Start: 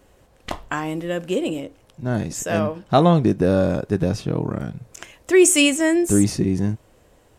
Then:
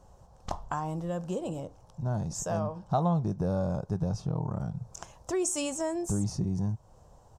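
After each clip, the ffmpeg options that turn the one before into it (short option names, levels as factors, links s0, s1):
-af "firequalizer=gain_entry='entry(170,0);entry(270,-13);entry(850,2);entry(2000,-21);entry(5700,-3);entry(11000,-15)':delay=0.05:min_phase=1,acompressor=threshold=0.02:ratio=2,volume=1.19"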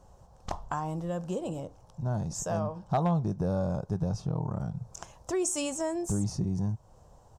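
-af "asoftclip=type=hard:threshold=0.119"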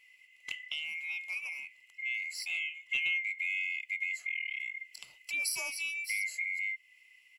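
-af "afftfilt=real='real(if(lt(b,920),b+92*(1-2*mod(floor(b/92),2)),b),0)':imag='imag(if(lt(b,920),b+92*(1-2*mod(floor(b/92),2)),b),0)':win_size=2048:overlap=0.75,highshelf=f=9200:g=9,volume=0.501"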